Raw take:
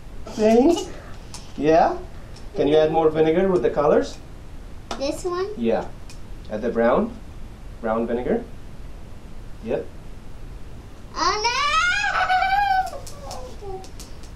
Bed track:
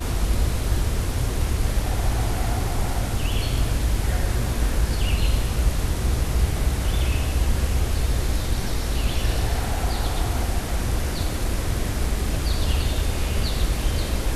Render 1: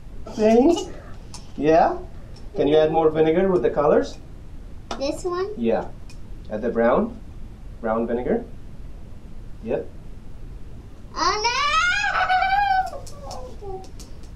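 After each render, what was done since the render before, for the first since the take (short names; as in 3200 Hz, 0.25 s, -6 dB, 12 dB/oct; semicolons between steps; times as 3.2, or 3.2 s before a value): denoiser 6 dB, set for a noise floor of -40 dBFS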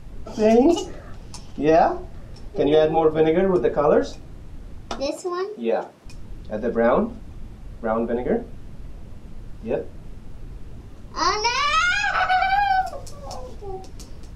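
5.06–6.05 HPF 290 Hz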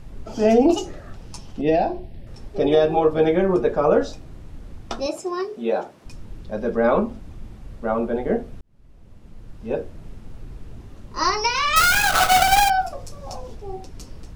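1.61–2.27 fixed phaser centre 3000 Hz, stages 4; 8.61–9.82 fade in; 11.76–12.7 half-waves squared off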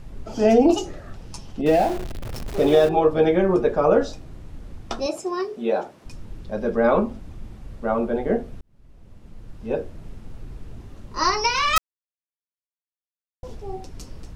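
1.66–2.89 zero-crossing step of -28.5 dBFS; 11.78–13.43 mute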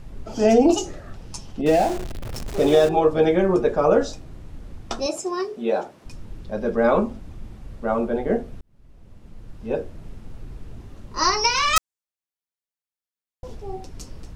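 dynamic EQ 7200 Hz, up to +7 dB, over -48 dBFS, Q 1.2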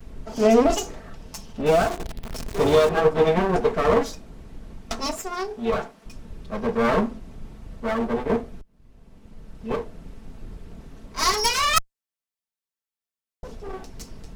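minimum comb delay 4.5 ms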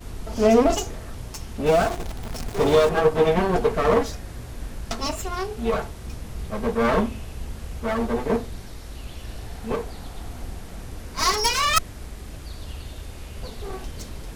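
add bed track -13.5 dB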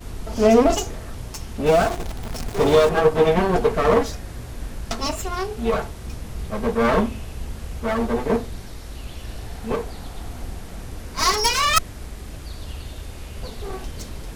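gain +2 dB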